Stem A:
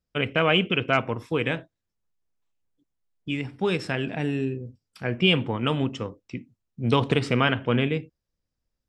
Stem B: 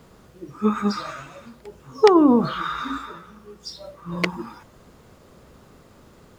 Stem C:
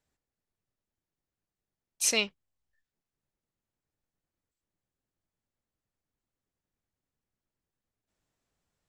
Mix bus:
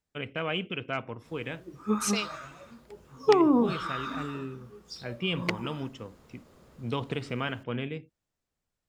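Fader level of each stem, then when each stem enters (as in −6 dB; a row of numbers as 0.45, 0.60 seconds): −10.5, −7.0, −5.0 decibels; 0.00, 1.25, 0.00 seconds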